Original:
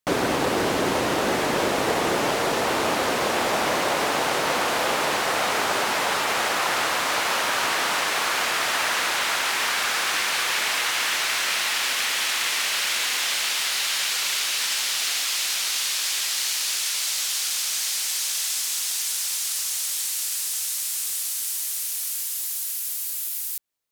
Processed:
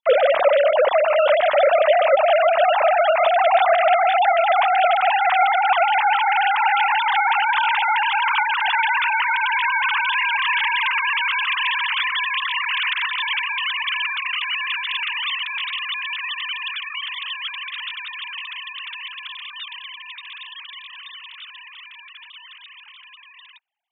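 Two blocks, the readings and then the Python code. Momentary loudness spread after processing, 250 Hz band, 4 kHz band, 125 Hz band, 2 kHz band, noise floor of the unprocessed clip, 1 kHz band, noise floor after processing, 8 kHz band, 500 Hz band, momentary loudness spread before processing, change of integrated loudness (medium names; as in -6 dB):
16 LU, under -25 dB, -1.5 dB, under -30 dB, +4.5 dB, -29 dBFS, +8.0 dB, -44 dBFS, under -40 dB, +8.5 dB, 3 LU, +4.0 dB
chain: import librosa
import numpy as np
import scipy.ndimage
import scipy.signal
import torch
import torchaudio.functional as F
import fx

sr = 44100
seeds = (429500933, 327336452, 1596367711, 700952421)

y = fx.sine_speech(x, sr)
y = fx.peak_eq(y, sr, hz=1500.0, db=-6.5, octaves=1.7)
y = y * 10.0 ** (8.0 / 20.0)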